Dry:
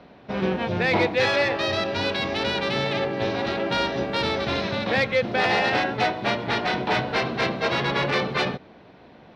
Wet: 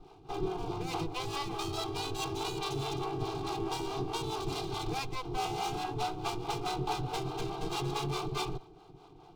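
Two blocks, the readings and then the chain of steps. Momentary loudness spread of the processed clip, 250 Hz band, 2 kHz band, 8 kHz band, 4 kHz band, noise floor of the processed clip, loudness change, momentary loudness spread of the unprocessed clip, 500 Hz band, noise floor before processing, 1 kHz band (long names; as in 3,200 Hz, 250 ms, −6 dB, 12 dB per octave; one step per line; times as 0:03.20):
3 LU, −10.5 dB, −20.5 dB, can't be measured, −11.5 dB, −55 dBFS, −12.0 dB, 5 LU, −13.0 dB, −49 dBFS, −9.0 dB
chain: lower of the sound and its delayed copy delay 2.5 ms
bass and treble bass +8 dB, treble 0 dB
mains-hum notches 60/120 Hz
downward compressor, threshold −25 dBFS, peak gain reduction 8.5 dB
two-band tremolo in antiphase 4.7 Hz, depth 70%, crossover 430 Hz
phaser with its sweep stopped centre 360 Hz, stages 8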